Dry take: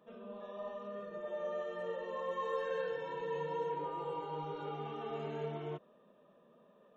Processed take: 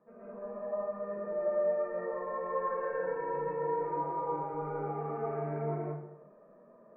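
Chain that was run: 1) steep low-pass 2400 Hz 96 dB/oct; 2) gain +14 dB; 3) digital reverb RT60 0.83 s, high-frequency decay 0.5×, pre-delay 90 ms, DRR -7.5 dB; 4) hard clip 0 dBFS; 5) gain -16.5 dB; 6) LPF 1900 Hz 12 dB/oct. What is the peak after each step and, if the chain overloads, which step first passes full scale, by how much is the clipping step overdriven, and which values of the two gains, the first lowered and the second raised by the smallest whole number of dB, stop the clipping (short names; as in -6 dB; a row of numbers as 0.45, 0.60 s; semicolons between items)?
-25.0, -11.0, -5.0, -5.0, -21.5, -21.5 dBFS; no overload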